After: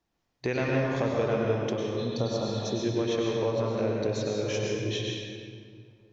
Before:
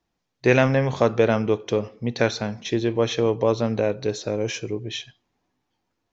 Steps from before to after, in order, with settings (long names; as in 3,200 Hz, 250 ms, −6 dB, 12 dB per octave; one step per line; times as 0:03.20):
healed spectral selection 0:02.00–0:02.77, 1,400–4,200 Hz after
downward compressor 2.5 to 1, threshold −28 dBFS, peak gain reduction 11 dB
convolution reverb RT60 2.2 s, pre-delay 93 ms, DRR −2.5 dB
level −3 dB